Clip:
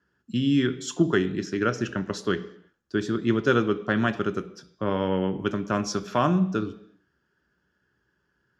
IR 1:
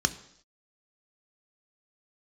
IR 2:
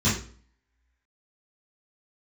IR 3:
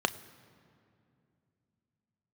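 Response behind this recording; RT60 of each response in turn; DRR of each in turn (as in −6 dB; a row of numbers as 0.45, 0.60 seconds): 1; non-exponential decay, 0.45 s, 2.6 s; 9.5, −12.0, 11.5 decibels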